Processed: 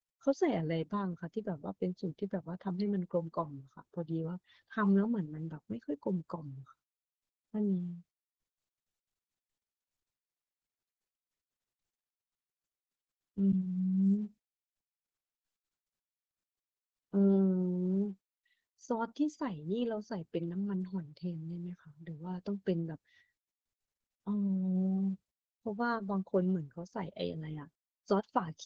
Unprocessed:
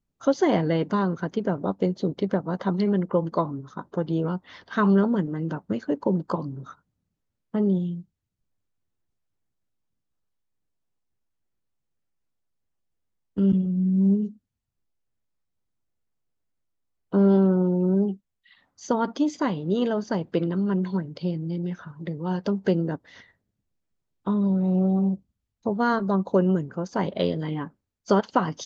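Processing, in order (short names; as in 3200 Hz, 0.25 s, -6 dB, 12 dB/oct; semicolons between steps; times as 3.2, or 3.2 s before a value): per-bin expansion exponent 1.5; gain -7.5 dB; Opus 12 kbps 48000 Hz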